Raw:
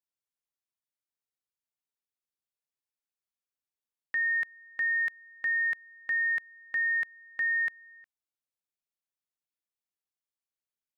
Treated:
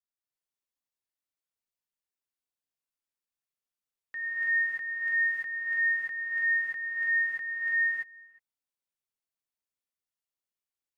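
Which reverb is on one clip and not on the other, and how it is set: non-linear reverb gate 0.36 s rising, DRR -7.5 dB; gain -9.5 dB

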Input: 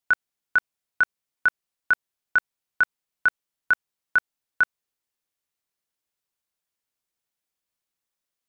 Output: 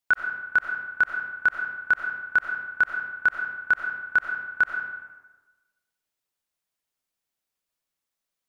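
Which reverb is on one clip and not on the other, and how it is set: digital reverb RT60 1.2 s, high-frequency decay 0.65×, pre-delay 50 ms, DRR 3 dB; gain -1 dB

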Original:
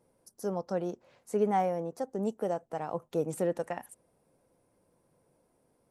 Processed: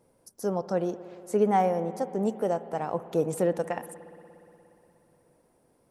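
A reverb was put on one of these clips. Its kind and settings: spring tank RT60 3.2 s, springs 59 ms, chirp 75 ms, DRR 13.5 dB; gain +4.5 dB

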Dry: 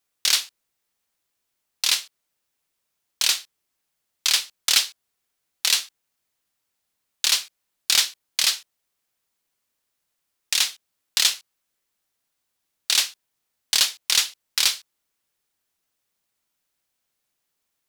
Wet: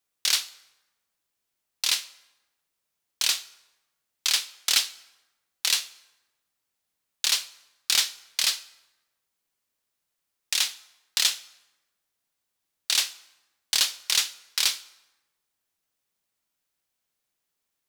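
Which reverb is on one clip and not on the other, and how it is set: plate-style reverb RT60 1.1 s, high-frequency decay 0.7×, DRR 16 dB; gain -3.5 dB

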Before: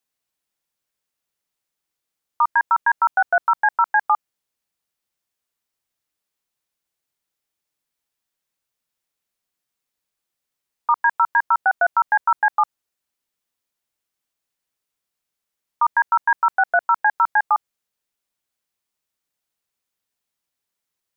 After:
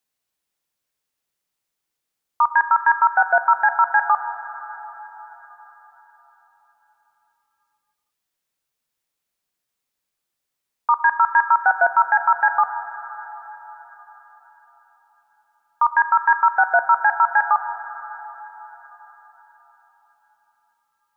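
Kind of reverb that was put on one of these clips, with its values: plate-style reverb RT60 4.7 s, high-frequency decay 0.8×, DRR 10 dB; gain +1 dB

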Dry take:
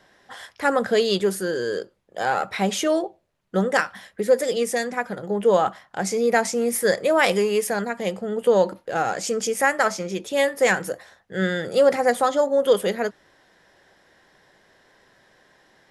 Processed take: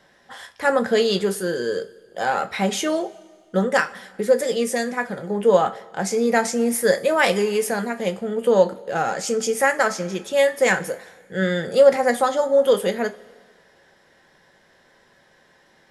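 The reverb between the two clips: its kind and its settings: two-slope reverb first 0.21 s, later 1.7 s, from -20 dB, DRR 7 dB

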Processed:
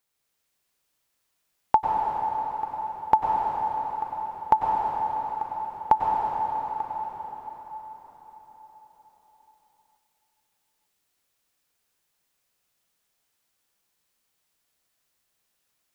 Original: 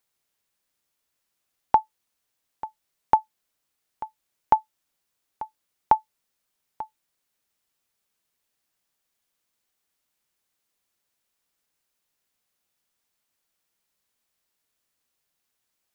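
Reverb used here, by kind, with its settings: plate-style reverb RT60 5 s, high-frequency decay 0.9×, pre-delay 85 ms, DRR -3 dB; gain -1 dB

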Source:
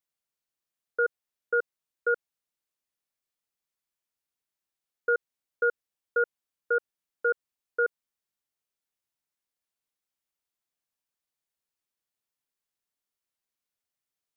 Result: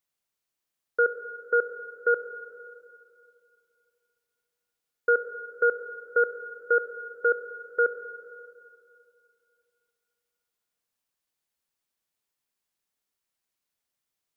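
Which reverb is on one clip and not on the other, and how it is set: Schroeder reverb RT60 2.6 s, combs from 29 ms, DRR 9 dB; gain +3.5 dB

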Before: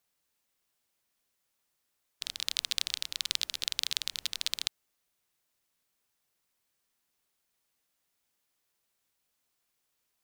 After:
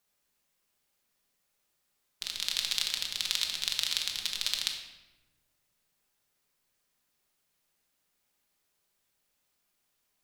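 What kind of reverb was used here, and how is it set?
shoebox room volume 590 m³, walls mixed, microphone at 1.3 m

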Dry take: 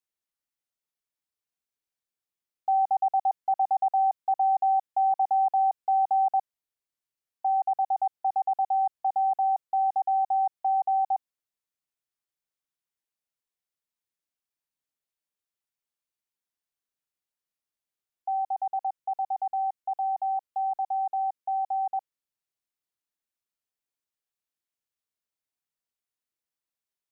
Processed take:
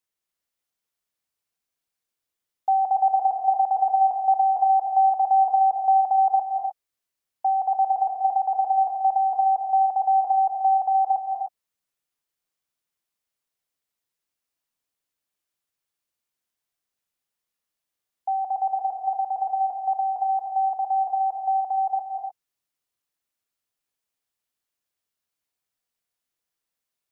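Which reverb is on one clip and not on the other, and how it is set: non-linear reverb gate 0.33 s rising, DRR 3 dB; gain +4 dB

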